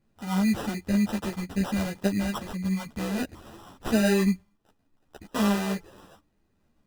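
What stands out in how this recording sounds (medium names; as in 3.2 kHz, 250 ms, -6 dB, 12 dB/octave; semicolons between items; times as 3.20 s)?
phasing stages 8, 0.62 Hz, lowest notch 750–1500 Hz; aliases and images of a low sample rate 2.2 kHz, jitter 0%; a shimmering, thickened sound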